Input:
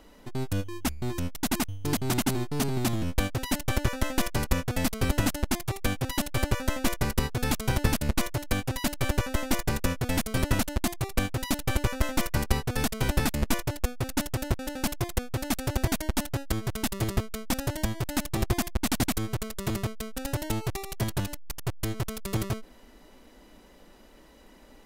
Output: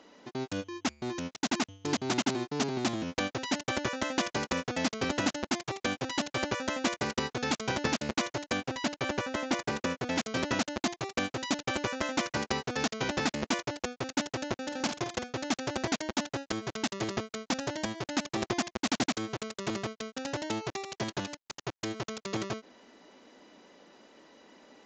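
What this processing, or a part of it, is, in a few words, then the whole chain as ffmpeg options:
Bluetooth headset: -filter_complex "[0:a]asettb=1/sr,asplit=3[a][b][c];[a]atrim=end=8.574[d];[b]atrim=start=8.57:end=10.16,asetpts=PTS-STARTPTS,afade=t=in:d=0.004:c=qsin,afade=t=out:st=1.586:d=0.004:c=qsin,highshelf=f=3.9k:g=-4.5[e];[c]atrim=start=10.156[f];[d][e]acrossfade=d=0.004:c1=hsin:c2=qsin[g];[g][f]acrossfade=d=0.004:c1=qsin:c2=hsin,asettb=1/sr,asplit=3[h][i][j];[h]atrim=end=14.664[k];[i]atrim=start=14.66:end=15.38,asetpts=PTS-STARTPTS,afade=t=in:d=0.004:c=qsin,afade=t=out:st=0.716:d=0.004:c=qsin,asplit=2[l][m];[m]adelay=50,volume=-8.5dB[n];[l][n]amix=inputs=2:normalize=0,atrim=end_sample=31752[o];[j]atrim=start=15.376[p];[k][o]acrossfade=d=0.004:c1=hsin:c2=qsin[q];[q][p]acrossfade=d=0.004:c1=qsin:c2=hsin,highpass=230,aresample=16000,aresample=44100" -ar 16000 -c:a sbc -b:a 64k

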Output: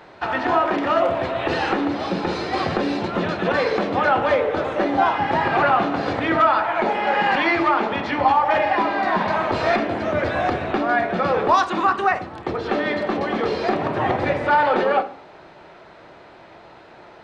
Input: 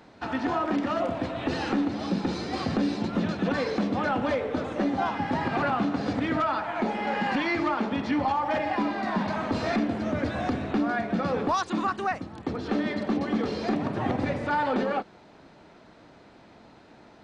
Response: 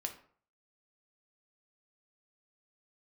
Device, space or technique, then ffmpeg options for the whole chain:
filtered reverb send: -filter_complex "[0:a]asplit=2[a][b];[b]highpass=f=250:w=0.5412,highpass=f=250:w=1.3066,lowpass=3.9k[c];[1:a]atrim=start_sample=2205[d];[c][d]afir=irnorm=-1:irlink=0,volume=3dB[e];[a][e]amix=inputs=2:normalize=0,volume=3dB"

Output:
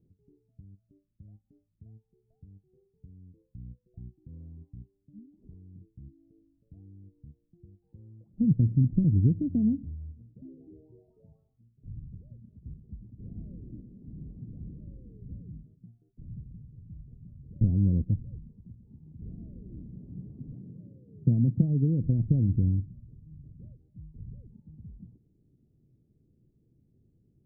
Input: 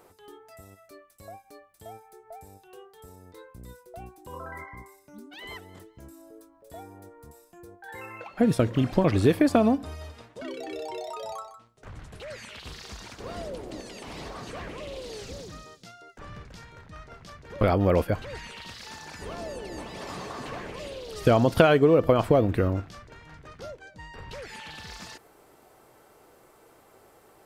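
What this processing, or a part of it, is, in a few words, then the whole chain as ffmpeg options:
the neighbour's flat through the wall: -filter_complex "[0:a]lowpass=f=230:w=0.5412,lowpass=f=230:w=1.3066,equalizer=f=130:t=o:w=0.97:g=5,asplit=3[a][b][c];[a]afade=t=out:st=20.52:d=0.02[d];[b]highpass=f=110:w=0.5412,highpass=f=110:w=1.3066,afade=t=in:st=20.52:d=0.02,afade=t=out:st=21.61:d=0.02[e];[c]afade=t=in:st=21.61:d=0.02[f];[d][e][f]amix=inputs=3:normalize=0"

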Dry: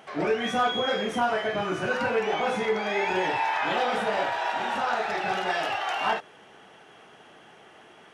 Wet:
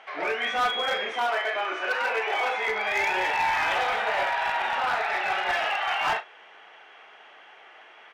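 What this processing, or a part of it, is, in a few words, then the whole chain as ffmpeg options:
megaphone: -filter_complex "[0:a]highpass=680,lowpass=3.7k,equalizer=f=2.2k:t=o:w=0.47:g=5,asoftclip=type=hard:threshold=-23dB,asplit=2[a][b];[b]adelay=38,volume=-11.5dB[c];[a][c]amix=inputs=2:normalize=0,asettb=1/sr,asplit=3[d][e][f];[d]atrim=end=1.124[g];[e]atrim=start=1.12:end=2.68,asetpts=PTS-STARTPTS,afade=t=in:d=0.004:c=qsin,afade=t=out:st=1.556:d=0.004:c=qsin,highpass=f=270:w=0.5412,highpass=f=270:w=1.3066[h];[f]atrim=start=2.676[i];[g][h]acrossfade=d=0.004:c1=hsin:c2=qsin[j];[j][i]acrossfade=d=0.004:c1=qsin:c2=hsin,volume=2.5dB"

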